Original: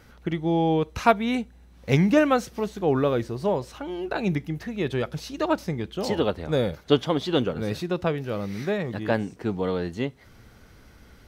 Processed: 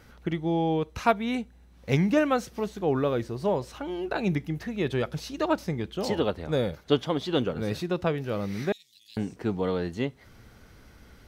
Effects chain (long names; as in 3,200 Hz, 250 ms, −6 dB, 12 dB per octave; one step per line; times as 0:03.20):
0:08.72–0:09.17: inverse Chebyshev high-pass filter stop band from 1,600 Hz, stop band 50 dB
in parallel at 0 dB: speech leveller within 4 dB 0.5 s
on the sum: level −8.5 dB